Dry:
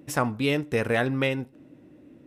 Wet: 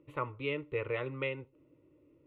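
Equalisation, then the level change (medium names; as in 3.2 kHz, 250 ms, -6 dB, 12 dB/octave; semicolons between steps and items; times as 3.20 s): dynamic bell 2 kHz, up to +6 dB, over -39 dBFS, Q 0.95; distance through air 370 m; static phaser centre 1.1 kHz, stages 8; -7.5 dB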